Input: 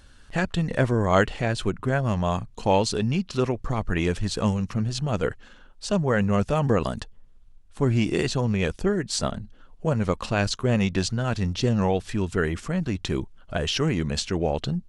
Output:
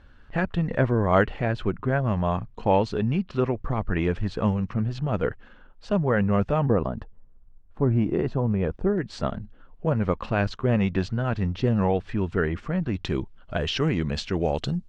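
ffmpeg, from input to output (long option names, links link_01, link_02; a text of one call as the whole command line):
ffmpeg -i in.wav -af "asetnsamples=nb_out_samples=441:pad=0,asendcmd='6.66 lowpass f 1100;8.98 lowpass f 2300;12.94 lowpass f 3800;14.37 lowpass f 8600',lowpass=2200" out.wav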